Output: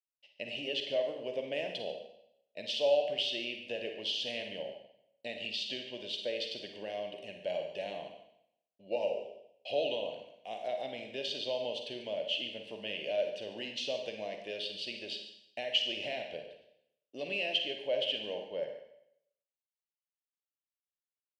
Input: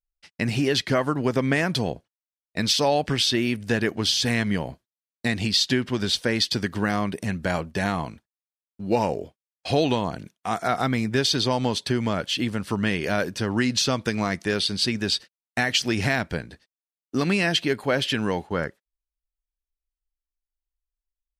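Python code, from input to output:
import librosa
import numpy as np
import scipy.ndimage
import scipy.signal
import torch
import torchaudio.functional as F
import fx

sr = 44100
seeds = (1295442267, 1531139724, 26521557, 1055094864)

y = fx.double_bandpass(x, sr, hz=1300.0, octaves=2.3)
y = y + 10.0 ** (-15.0 / 20.0) * np.pad(y, (int(143 * sr / 1000.0), 0))[:len(y)]
y = fx.rev_schroeder(y, sr, rt60_s=0.74, comb_ms=38, drr_db=4.5)
y = y * librosa.db_to_amplitude(-2.5)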